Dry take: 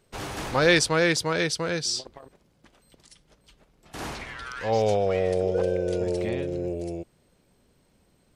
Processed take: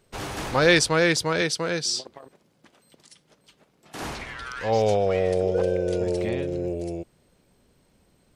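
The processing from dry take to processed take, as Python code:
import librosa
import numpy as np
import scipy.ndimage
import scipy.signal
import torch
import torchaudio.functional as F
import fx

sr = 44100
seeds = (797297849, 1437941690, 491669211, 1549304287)

y = fx.highpass(x, sr, hz=140.0, slope=12, at=(1.41, 4.02))
y = y * 10.0 ** (1.5 / 20.0)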